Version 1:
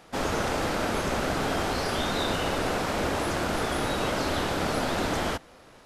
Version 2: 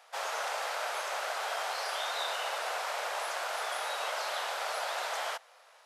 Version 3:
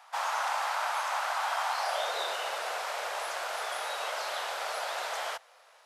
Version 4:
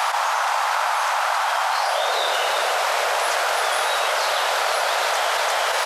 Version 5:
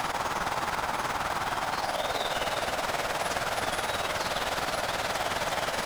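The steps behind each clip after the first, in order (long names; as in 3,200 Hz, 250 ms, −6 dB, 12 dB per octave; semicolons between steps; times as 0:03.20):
inverse Chebyshev high-pass filter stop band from 300 Hz, stop band 40 dB; level −4 dB
low-shelf EQ 91 Hz +8 dB; high-pass filter sweep 910 Hz → 75 Hz, 0:01.77–0:02.94
on a send: single-tap delay 347 ms −10.5 dB; on the sum: envelope flattener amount 100%; level +8 dB
amplitude tremolo 19 Hz, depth 57%; in parallel at −7.5 dB: decimation without filtering 30×; on the sum: level −7 dB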